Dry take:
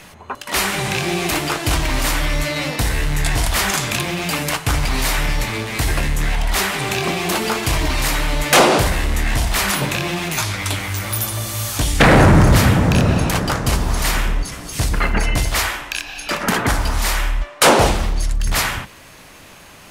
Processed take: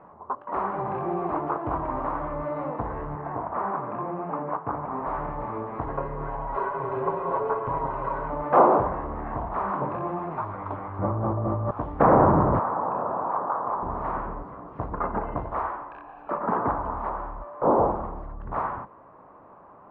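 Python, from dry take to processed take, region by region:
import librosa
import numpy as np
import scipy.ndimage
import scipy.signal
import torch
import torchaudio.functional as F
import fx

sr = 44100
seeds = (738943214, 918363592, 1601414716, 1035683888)

y = fx.chain(x, sr, fx.bandpass_edges(low_hz=130.0, high_hz=2700.0),
    fx.air_absorb(metres=160.0), at=(3.15, 5.07))
y = fx.chain(y, sr, fx.lower_of_two(delay_ms=2.0),
    fx.comb(ms=7.3, depth=0.74), at=(5.86, 8.3))
y = fx.chain(y, sr, fx.tilt_shelf(db=9.0, hz=930.0),
    fx.env_flatten(amount_pct=100), at=(10.99, 11.71))
y = fx.chain(y, sr, fx.bandpass_q(hz=1000.0, q=1.4),
    fx.env_flatten(amount_pct=50), at=(12.59, 13.83))
y = fx.chain(y, sr, fx.delta_mod(bps=32000, step_db=-30.0),
    fx.dynamic_eq(hz=2100.0, q=1.1, threshold_db=-36.0, ratio=4.0, max_db=-5), at=(17.09, 18.04))
y = scipy.signal.sosfilt(scipy.signal.cheby1(4, 1.0, 1100.0, 'lowpass', fs=sr, output='sos'), y)
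y = fx.tilt_eq(y, sr, slope=4.0)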